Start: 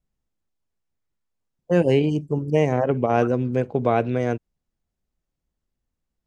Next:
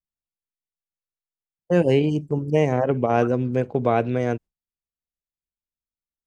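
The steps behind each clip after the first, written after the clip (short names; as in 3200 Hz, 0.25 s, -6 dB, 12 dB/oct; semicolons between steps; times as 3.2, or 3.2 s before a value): gate with hold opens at -26 dBFS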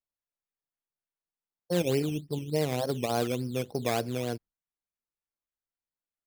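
decimation with a swept rate 12×, swing 60% 3.4 Hz; gain -9 dB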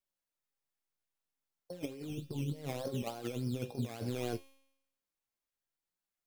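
negative-ratio compressor -34 dBFS, ratio -0.5; flange 0.33 Hz, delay 4.9 ms, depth 7.2 ms, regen +58%; resonator 270 Hz, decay 0.85 s, mix 70%; gain +10.5 dB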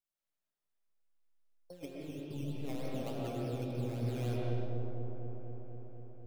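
dark delay 0.246 s, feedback 75%, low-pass 900 Hz, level -4 dB; reverb RT60 1.4 s, pre-delay 85 ms, DRR -2.5 dB; gain -6 dB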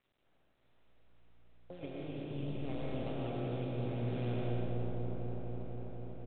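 per-bin compression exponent 0.6; frequency-shifting echo 81 ms, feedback 59%, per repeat +59 Hz, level -14 dB; gain -3 dB; G.726 32 kbps 8000 Hz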